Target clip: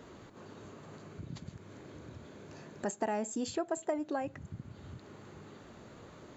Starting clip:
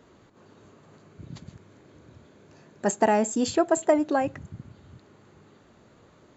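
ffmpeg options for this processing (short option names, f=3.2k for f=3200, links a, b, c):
-af "acompressor=threshold=-49dB:ratio=2,volume=4dB"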